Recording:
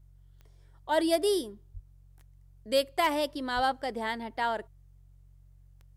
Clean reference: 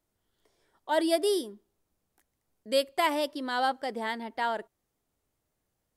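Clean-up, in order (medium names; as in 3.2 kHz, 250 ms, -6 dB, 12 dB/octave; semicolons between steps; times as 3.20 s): clip repair -16 dBFS; de-click; de-hum 45.9 Hz, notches 3; 1.73–1.85 s: high-pass 140 Hz 24 dB/octave; 3.55–3.67 s: high-pass 140 Hz 24 dB/octave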